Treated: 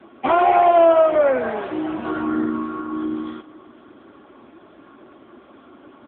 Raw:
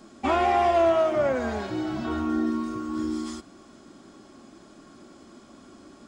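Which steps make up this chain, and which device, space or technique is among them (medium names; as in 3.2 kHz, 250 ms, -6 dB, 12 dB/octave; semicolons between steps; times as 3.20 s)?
satellite phone (band-pass 330–3200 Hz; delay 511 ms -23 dB; trim +8.5 dB; AMR-NB 6.7 kbps 8 kHz)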